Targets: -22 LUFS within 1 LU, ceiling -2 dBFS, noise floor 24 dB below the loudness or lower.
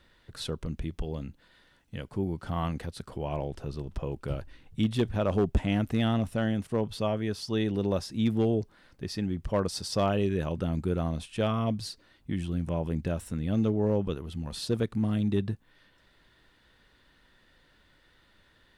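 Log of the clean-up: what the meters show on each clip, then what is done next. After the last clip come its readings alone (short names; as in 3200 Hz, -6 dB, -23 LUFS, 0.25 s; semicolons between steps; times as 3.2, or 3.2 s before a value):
clipped 0.3%; flat tops at -18.0 dBFS; loudness -30.5 LUFS; peak -18.0 dBFS; loudness target -22.0 LUFS
-> clip repair -18 dBFS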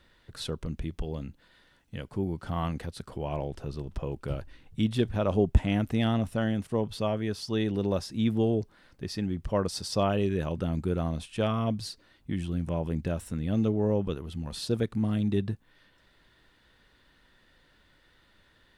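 clipped 0.0%; loudness -30.5 LUFS; peak -9.5 dBFS; loudness target -22.0 LUFS
-> gain +8.5 dB; limiter -2 dBFS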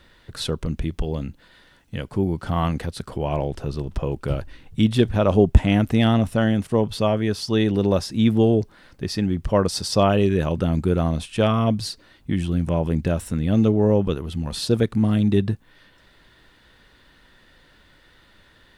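loudness -22.0 LUFS; peak -2.0 dBFS; noise floor -55 dBFS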